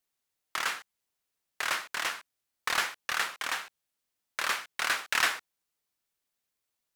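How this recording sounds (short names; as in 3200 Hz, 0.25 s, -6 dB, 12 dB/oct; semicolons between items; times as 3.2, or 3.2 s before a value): noise floor -85 dBFS; spectral tilt -0.5 dB/oct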